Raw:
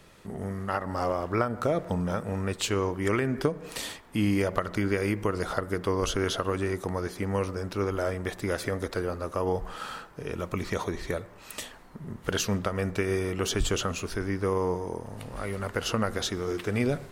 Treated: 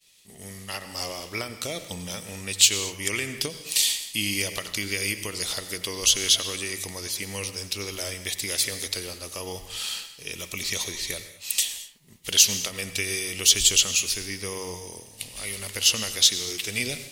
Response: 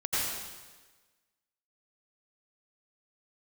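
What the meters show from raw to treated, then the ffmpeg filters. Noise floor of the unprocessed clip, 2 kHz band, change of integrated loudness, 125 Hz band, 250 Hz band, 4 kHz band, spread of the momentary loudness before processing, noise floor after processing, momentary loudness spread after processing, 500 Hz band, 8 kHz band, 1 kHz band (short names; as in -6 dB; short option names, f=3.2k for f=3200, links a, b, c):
-50 dBFS, +4.0 dB, +5.5 dB, -8.0 dB, -8.5 dB, +14.0 dB, 9 LU, -48 dBFS, 16 LU, -8.5 dB, +16.5 dB, -9.0 dB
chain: -filter_complex "[0:a]aexciter=amount=8.7:drive=8.3:freq=2.2k,agate=range=-33dB:threshold=-29dB:ratio=3:detection=peak,asplit=2[a][b];[1:a]atrim=start_sample=2205,afade=t=out:st=0.3:d=0.01,atrim=end_sample=13671[c];[b][c]afir=irnorm=-1:irlink=0,volume=-18dB[d];[a][d]amix=inputs=2:normalize=0,volume=-9.5dB"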